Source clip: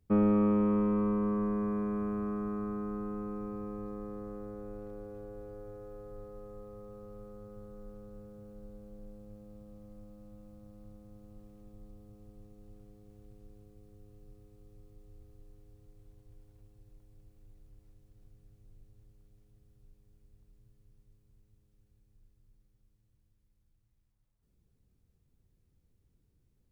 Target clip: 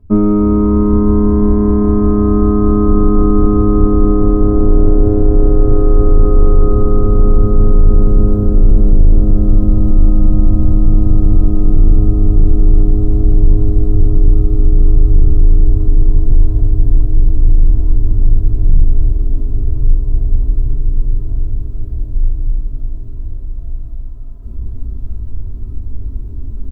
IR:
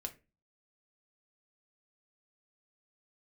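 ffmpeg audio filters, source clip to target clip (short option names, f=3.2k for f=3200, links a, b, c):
-filter_complex "[0:a]highshelf=f=1.5k:t=q:w=1.5:g=-9,asplit=6[a][b][c][d][e][f];[b]adelay=282,afreqshift=-140,volume=-19dB[g];[c]adelay=564,afreqshift=-280,volume=-23.4dB[h];[d]adelay=846,afreqshift=-420,volume=-27.9dB[i];[e]adelay=1128,afreqshift=-560,volume=-32.3dB[j];[f]adelay=1410,afreqshift=-700,volume=-36.7dB[k];[a][g][h][i][j][k]amix=inputs=6:normalize=0,areverse,acompressor=threshold=-45dB:ratio=20,areverse,bass=f=250:g=14,treble=f=4k:g=-7,aecho=1:1:3.1:0.89[l];[1:a]atrim=start_sample=2205,atrim=end_sample=3528[m];[l][m]afir=irnorm=-1:irlink=0,apsyclip=34dB,volume=-1.5dB"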